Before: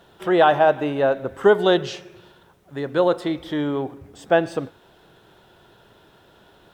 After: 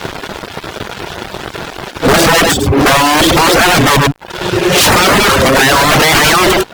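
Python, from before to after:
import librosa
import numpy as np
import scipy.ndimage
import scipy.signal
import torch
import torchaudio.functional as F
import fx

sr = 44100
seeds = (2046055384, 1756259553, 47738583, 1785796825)

p1 = np.flip(x).copy()
p2 = fx.high_shelf(p1, sr, hz=4900.0, db=-6.5)
p3 = fx.leveller(p2, sr, passes=3)
p4 = fx.over_compress(p3, sr, threshold_db=-16.0, ratio=-0.5)
p5 = p3 + (p4 * librosa.db_to_amplitude(3.0))
p6 = 10.0 ** (-11.5 / 20.0) * (np.abs((p5 / 10.0 ** (-11.5 / 20.0) + 3.0) % 4.0 - 2.0) - 1.0)
p7 = p6 + 10.0 ** (-13.5 / 20.0) * np.pad(p6, (int(102 * sr / 1000.0), 0))[:len(p6)]
p8 = fx.fuzz(p7, sr, gain_db=40.0, gate_db=-47.0)
p9 = fx.dereverb_blind(p8, sr, rt60_s=0.65)
y = p9 * librosa.db_to_amplitude(7.5)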